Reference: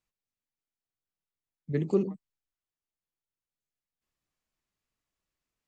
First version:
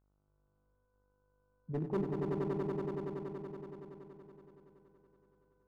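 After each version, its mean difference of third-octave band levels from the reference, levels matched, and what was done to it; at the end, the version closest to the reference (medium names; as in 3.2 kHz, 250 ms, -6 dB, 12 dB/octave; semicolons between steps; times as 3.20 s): 7.0 dB: low-pass 1.4 kHz 24 dB/octave; overload inside the chain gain 23 dB; mains buzz 50 Hz, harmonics 30, -70 dBFS -6 dB/octave; on a send: echo with a slow build-up 94 ms, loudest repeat 5, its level -3.5 dB; on the sum: trim -6.5 dB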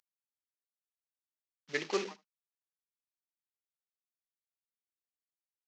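13.5 dB: CVSD coder 32 kbps; high-pass 920 Hz 12 dB/octave; on a send: delay 76 ms -21 dB; on the sum: dynamic bell 2.2 kHz, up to +5 dB, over -59 dBFS, Q 1.4; trim +8 dB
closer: first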